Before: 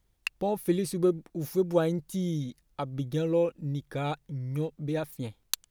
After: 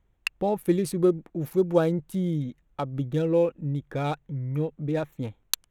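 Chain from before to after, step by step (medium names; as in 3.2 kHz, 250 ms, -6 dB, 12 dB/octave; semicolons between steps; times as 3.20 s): local Wiener filter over 9 samples; trim +3.5 dB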